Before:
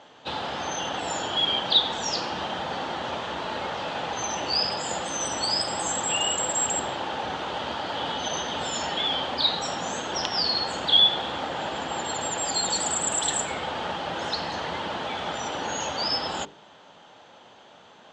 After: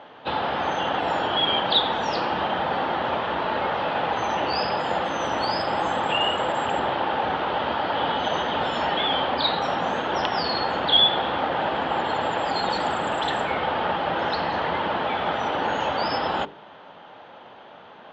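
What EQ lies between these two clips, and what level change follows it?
air absorption 260 m; low shelf 370 Hz -5.5 dB; high shelf 5500 Hz -11.5 dB; +9.0 dB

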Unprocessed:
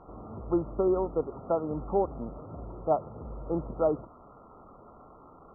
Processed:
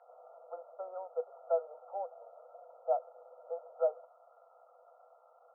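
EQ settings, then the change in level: rippled Chebyshev high-pass 480 Hz, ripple 9 dB; bell 1100 Hz -13 dB 0.3 oct; 0.0 dB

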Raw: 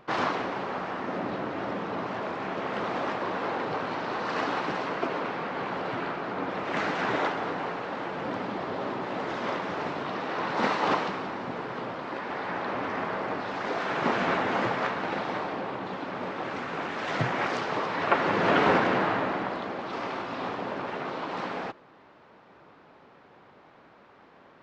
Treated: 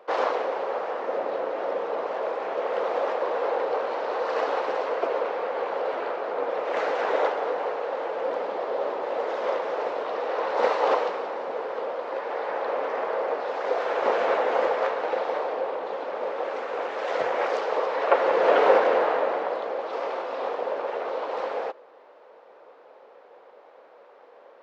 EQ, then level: resonant high-pass 500 Hz, resonance Q 4.9; bell 860 Hz +2.5 dB; -3.0 dB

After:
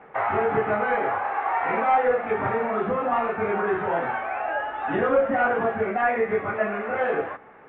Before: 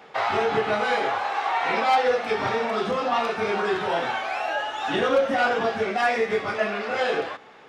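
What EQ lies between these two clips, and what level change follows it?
inverse Chebyshev low-pass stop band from 5200 Hz, stop band 50 dB; low shelf 93 Hz +8 dB; 0.0 dB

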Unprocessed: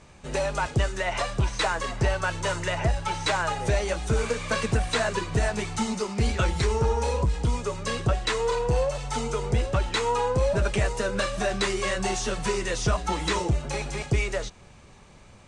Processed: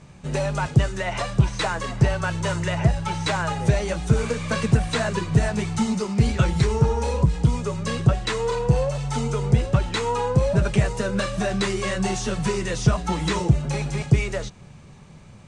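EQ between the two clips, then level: bell 150 Hz +11.5 dB 1.2 oct; 0.0 dB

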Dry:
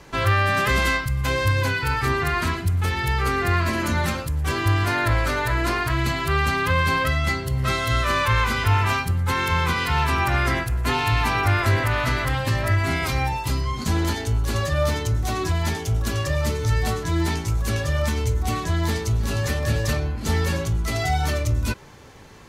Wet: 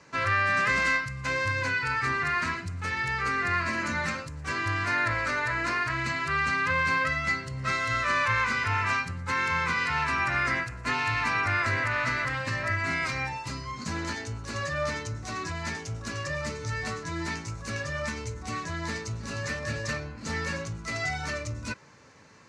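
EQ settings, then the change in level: speaker cabinet 120–7500 Hz, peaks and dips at 380 Hz -7 dB, 770 Hz -7 dB, 3300 Hz -10 dB; low shelf 470 Hz -3.5 dB; dynamic EQ 1900 Hz, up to +5 dB, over -36 dBFS, Q 1.2; -4.5 dB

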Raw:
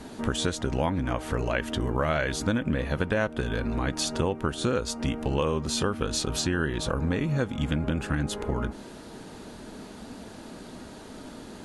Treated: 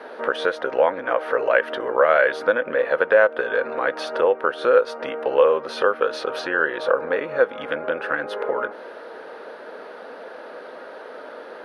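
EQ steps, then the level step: running mean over 6 samples; resonant high-pass 510 Hz, resonance Q 4.9; bell 1500 Hz +11.5 dB 1.1 oct; 0.0 dB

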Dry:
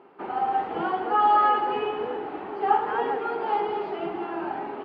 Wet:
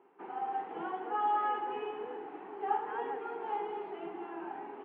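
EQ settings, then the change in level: air absorption 330 m; speaker cabinet 200–3900 Hz, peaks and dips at 230 Hz -3 dB, 600 Hz -9 dB, 1300 Hz -5 dB; low shelf 260 Hz -4.5 dB; -7.0 dB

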